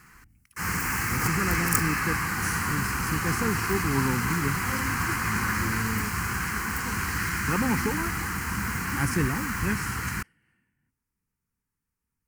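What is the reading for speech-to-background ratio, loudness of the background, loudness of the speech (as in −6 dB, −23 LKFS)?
−4.0 dB, −27.5 LKFS, −31.5 LKFS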